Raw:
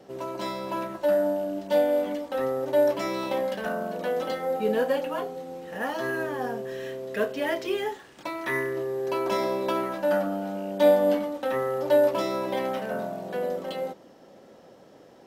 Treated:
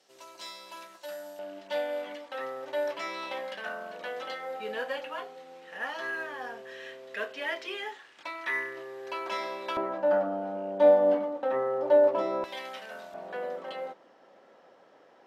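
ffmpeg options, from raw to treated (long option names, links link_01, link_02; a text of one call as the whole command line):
ffmpeg -i in.wav -af "asetnsamples=nb_out_samples=441:pad=0,asendcmd='1.39 bandpass f 2300;9.77 bandpass f 700;12.44 bandpass f 3600;13.14 bandpass f 1400',bandpass=frequency=5900:width_type=q:width=0.77:csg=0" out.wav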